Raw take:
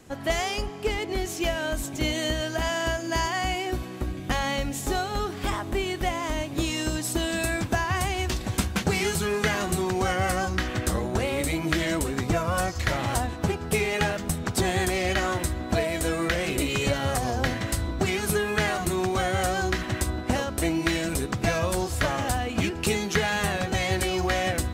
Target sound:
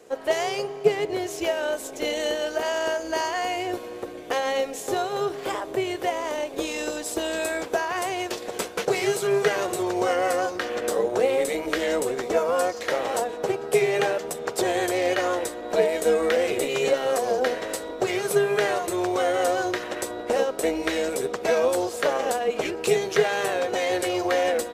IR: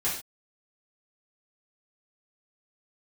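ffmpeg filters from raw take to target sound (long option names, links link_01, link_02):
-af "asetrate=42845,aresample=44100,atempo=1.0293,highpass=frequency=460:width_type=q:width=4.9,tremolo=f=260:d=0.4"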